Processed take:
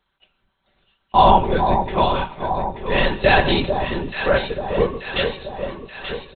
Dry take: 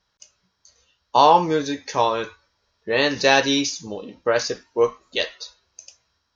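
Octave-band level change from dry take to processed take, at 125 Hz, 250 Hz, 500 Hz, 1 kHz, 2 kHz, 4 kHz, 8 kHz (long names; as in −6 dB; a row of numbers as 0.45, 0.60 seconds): +10.0 dB, +2.0 dB, +1.5 dB, +2.5 dB, +2.0 dB, −1.0 dB, can't be measured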